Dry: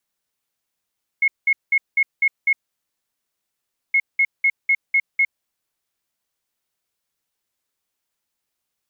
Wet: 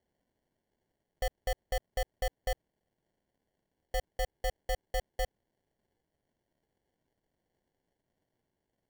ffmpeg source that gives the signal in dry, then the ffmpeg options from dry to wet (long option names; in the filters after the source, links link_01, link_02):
-f lavfi -i "aevalsrc='0.224*sin(2*PI*2170*t)*clip(min(mod(mod(t,2.72),0.25),0.06-mod(mod(t,2.72),0.25))/0.005,0,1)*lt(mod(t,2.72),1.5)':duration=5.44:sample_rate=44100"
-af "alimiter=limit=-23dB:level=0:latency=1:release=41,aeval=exprs='val(0)*sin(2*PI*390*n/s)':channel_layout=same,acrusher=samples=35:mix=1:aa=0.000001"